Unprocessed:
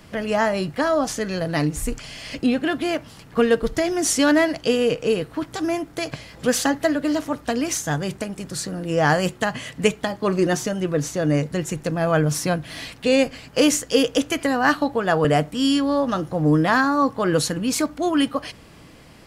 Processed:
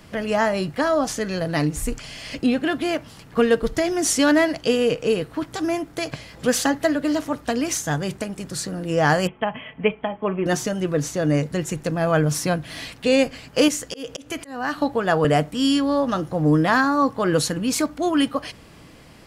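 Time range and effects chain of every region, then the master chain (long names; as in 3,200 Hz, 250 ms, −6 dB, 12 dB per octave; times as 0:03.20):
0:09.27–0:10.46: Chebyshev low-pass with heavy ripple 3,300 Hz, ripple 6 dB + comb filter 4.6 ms, depth 40%
0:13.68–0:14.78: downward compressor 2 to 1, threshold −26 dBFS + volume swells 183 ms + one half of a high-frequency compander decoder only
whole clip: no processing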